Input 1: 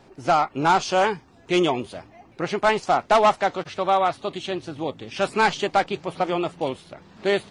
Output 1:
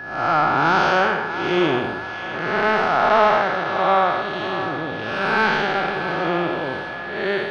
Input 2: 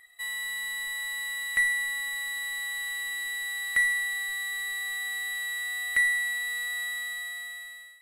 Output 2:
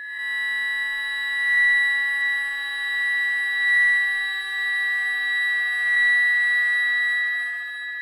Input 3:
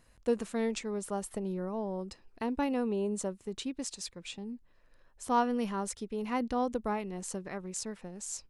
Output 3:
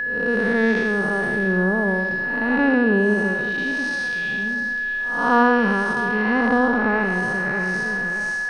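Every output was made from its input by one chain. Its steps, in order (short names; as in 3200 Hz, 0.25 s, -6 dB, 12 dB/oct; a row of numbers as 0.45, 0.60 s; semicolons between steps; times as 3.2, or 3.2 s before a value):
time blur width 0.279 s; polynomial smoothing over 15 samples; bell 1500 Hz +8.5 dB 0.73 oct; on a send: split-band echo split 570 Hz, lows 92 ms, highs 0.649 s, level -10.5 dB; on the sum: whine 1700 Hz -37 dBFS; match loudness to -20 LUFS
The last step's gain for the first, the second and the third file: +5.5, +5.0, +15.0 dB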